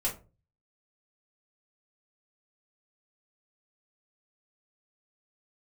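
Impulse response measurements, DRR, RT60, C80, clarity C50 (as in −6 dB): −5.5 dB, 0.35 s, 18.0 dB, 11.0 dB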